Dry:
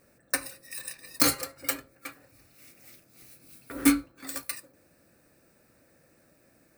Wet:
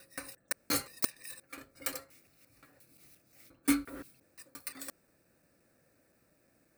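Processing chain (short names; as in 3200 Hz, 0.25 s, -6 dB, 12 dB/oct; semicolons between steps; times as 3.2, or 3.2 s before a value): slices in reverse order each 0.175 s, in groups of 4; gain -7 dB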